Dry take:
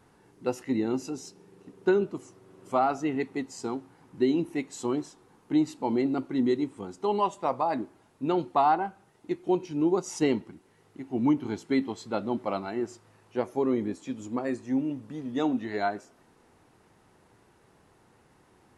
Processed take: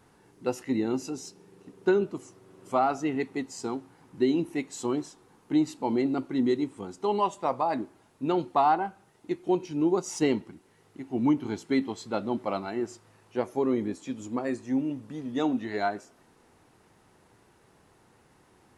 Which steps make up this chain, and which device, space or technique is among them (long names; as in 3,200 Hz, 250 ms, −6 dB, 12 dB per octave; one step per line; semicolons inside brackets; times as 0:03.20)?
exciter from parts (in parallel at −9 dB: high-pass filter 3,400 Hz 6 dB per octave + soft clipping −38 dBFS, distortion −9 dB)